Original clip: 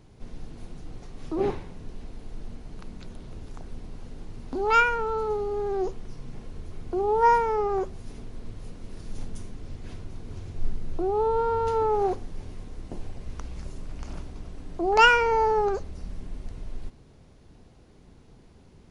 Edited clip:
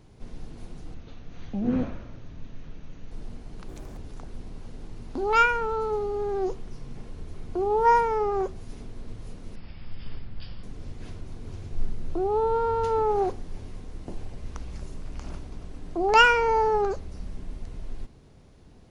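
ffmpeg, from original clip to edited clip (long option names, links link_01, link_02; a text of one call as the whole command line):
ffmpeg -i in.wav -filter_complex "[0:a]asplit=7[link_01][link_02][link_03][link_04][link_05][link_06][link_07];[link_01]atrim=end=0.944[link_08];[link_02]atrim=start=0.94:end=2.31,asetpts=PTS-STARTPTS,asetrate=27783,aresample=44100[link_09];[link_03]atrim=start=2.306:end=2.884[link_10];[link_04]atrim=start=2.88:end=3.35,asetpts=PTS-STARTPTS,asetrate=71442,aresample=44100,atrim=end_sample=12794,asetpts=PTS-STARTPTS[link_11];[link_05]atrim=start=3.346:end=8.934[link_12];[link_06]atrim=start=8.93:end=9.47,asetpts=PTS-STARTPTS,asetrate=22050,aresample=44100[link_13];[link_07]atrim=start=9.466[link_14];[link_08][link_09]acrossfade=duration=0.004:curve1=hsin:curve2=hsin[link_15];[link_15][link_10]acrossfade=duration=0.004:curve1=hsin:curve2=hsin[link_16];[link_16][link_11]acrossfade=duration=0.004:curve1=hsin:curve2=hsin[link_17];[link_17][link_12]acrossfade=duration=0.004:curve1=hsin:curve2=hsin[link_18];[link_18][link_13]acrossfade=duration=0.004:curve1=hsin:curve2=hsin[link_19];[link_19][link_14]acrossfade=duration=0.004:curve1=hsin:curve2=hsin" out.wav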